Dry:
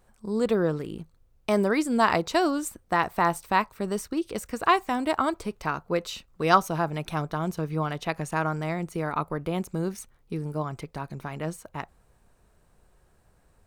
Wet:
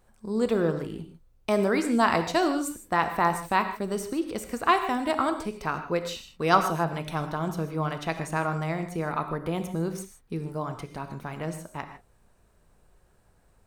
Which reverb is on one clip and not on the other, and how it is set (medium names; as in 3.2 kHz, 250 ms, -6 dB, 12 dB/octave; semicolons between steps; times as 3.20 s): gated-style reverb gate 180 ms flat, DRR 7.5 dB; trim -1 dB